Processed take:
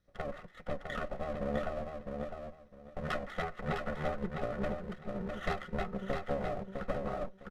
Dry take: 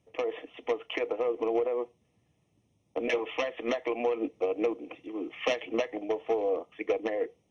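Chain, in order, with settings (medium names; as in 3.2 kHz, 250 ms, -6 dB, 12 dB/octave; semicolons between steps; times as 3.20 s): comb filter that takes the minimum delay 0.97 ms; pitch shift -8 st; comb 5.5 ms, depth 32%; on a send: feedback delay 656 ms, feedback 20%, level -5 dB; on the sum: trim -3 dB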